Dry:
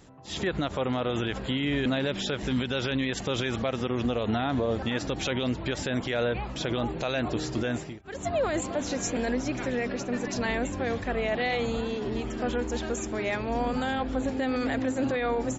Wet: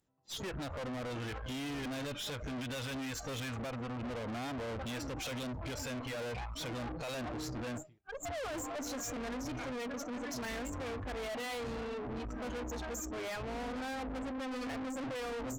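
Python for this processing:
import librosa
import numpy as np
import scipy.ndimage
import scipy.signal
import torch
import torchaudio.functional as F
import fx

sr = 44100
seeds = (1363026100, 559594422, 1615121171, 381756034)

y = fx.noise_reduce_blind(x, sr, reduce_db=28)
y = fx.tube_stage(y, sr, drive_db=41.0, bias=0.6)
y = F.gain(torch.from_numpy(y), 3.0).numpy()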